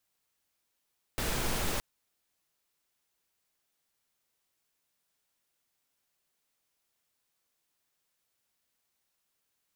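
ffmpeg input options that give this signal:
-f lavfi -i "anoisesrc=c=pink:a=0.136:d=0.62:r=44100:seed=1"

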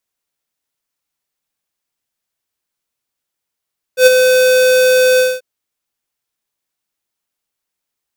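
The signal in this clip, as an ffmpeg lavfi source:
-f lavfi -i "aevalsrc='0.631*(2*lt(mod(509*t,1),0.5)-1)':d=1.437:s=44100,afade=t=in:d=0.094,afade=t=out:st=0.094:d=0.023:silence=0.501,afade=t=out:st=1.22:d=0.217"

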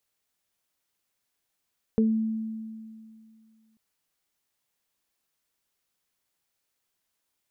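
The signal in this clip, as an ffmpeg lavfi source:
-f lavfi -i "aevalsrc='0.126*pow(10,-3*t/2.34)*sin(2*PI*221*t)+0.0891*pow(10,-3*t/0.23)*sin(2*PI*442*t)':d=1.79:s=44100"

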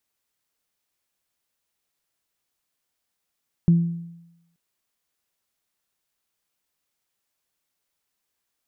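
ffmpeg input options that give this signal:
-f lavfi -i "aevalsrc='0.299*pow(10,-3*t/0.9)*sin(2*PI*169*t)+0.0299*pow(10,-3*t/0.6)*sin(2*PI*338*t)':d=0.88:s=44100"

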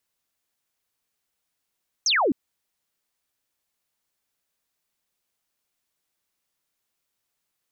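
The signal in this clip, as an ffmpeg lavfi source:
-f lavfi -i "aevalsrc='0.126*clip(t/0.002,0,1)*clip((0.26-t)/0.002,0,1)*sin(2*PI*6700*0.26/log(230/6700)*(exp(log(230/6700)*t/0.26)-1))':d=0.26:s=44100"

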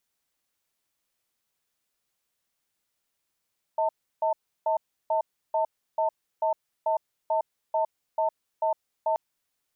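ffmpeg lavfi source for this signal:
-f lavfi -i "aevalsrc='0.0596*(sin(2*PI*637*t)+sin(2*PI*896*t))*clip(min(mod(t,0.44),0.11-mod(t,0.44))/0.005,0,1)':d=5.38:s=44100"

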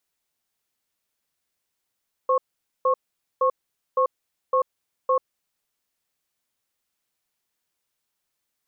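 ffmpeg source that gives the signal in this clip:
-f lavfi -i "aevalsrc='0.106*(sin(2*PI*517*t)+sin(2*PI*1090*t))*clip(min(mod(t,0.56),0.09-mod(t,0.56))/0.005,0,1)':d=3.27:s=44100"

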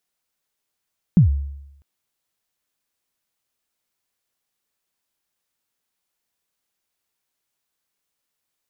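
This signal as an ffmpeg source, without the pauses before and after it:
-f lavfi -i "aevalsrc='0.473*pow(10,-3*t/0.86)*sin(2*PI*(200*0.116/log(70/200)*(exp(log(70/200)*min(t,0.116)/0.116)-1)+70*max(t-0.116,0)))':d=0.65:s=44100"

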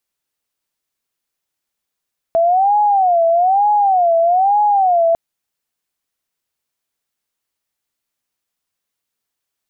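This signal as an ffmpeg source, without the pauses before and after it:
-f lavfi -i "aevalsrc='0.316*sin(2*PI*(750*t-86/(2*PI*1.1)*sin(2*PI*1.1*t)))':d=2.8:s=44100"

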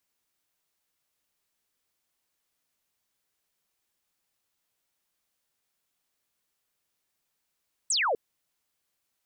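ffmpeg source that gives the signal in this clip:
-f lavfi -i "aevalsrc='0.0708*clip(t/0.002,0,1)*clip((0.25-t)/0.002,0,1)*sin(2*PI*8600*0.25/log(410/8600)*(exp(log(410/8600)*t/0.25)-1))':d=0.25:s=44100"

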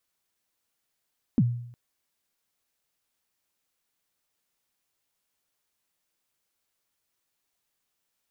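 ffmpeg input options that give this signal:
-f lavfi -i "aevalsrc='0.178*pow(10,-3*t/0.69)*sin(2*PI*(280*0.045/log(120/280)*(exp(log(120/280)*min(t,0.045)/0.045)-1)+120*max(t-0.045,0)))':d=0.36:s=44100"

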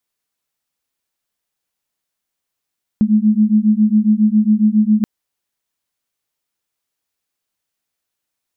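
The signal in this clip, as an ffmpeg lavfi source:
-f lavfi -i "aevalsrc='0.224*(sin(2*PI*210*t)+sin(2*PI*217.3*t))':d=2.03:s=44100"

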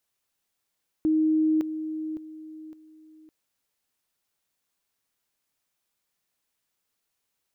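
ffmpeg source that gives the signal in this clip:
-f lavfi -i "aevalsrc='pow(10,(-19-10*floor(t/0.56))/20)*sin(2*PI*313*t)':d=2.24:s=44100"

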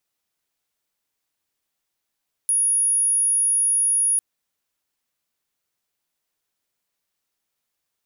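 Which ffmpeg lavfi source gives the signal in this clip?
-f lavfi -i "sine=f=10400:d=1.7:r=44100,volume=1.56dB"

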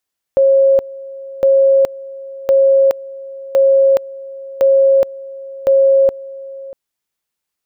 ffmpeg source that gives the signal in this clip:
-f lavfi -i "aevalsrc='pow(10,(-7-20*gte(mod(t,1.06),0.42))/20)*sin(2*PI*543*t)':d=6.36:s=44100"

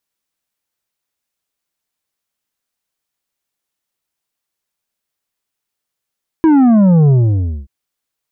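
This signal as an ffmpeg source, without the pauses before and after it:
-f lavfi -i "aevalsrc='0.447*clip((1.23-t)/0.58,0,1)*tanh(2.37*sin(2*PI*330*1.23/log(65/330)*(exp(log(65/330)*t/1.23)-1)))/tanh(2.37)':d=1.23:s=44100"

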